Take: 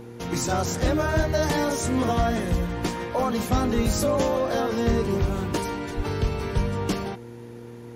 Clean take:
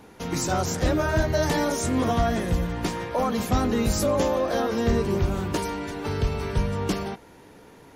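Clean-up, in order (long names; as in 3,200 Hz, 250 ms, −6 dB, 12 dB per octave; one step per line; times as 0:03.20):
hum removal 118.3 Hz, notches 4
0:03.75–0:03.87: high-pass filter 140 Hz 24 dB per octave
0:05.96–0:06.08: high-pass filter 140 Hz 24 dB per octave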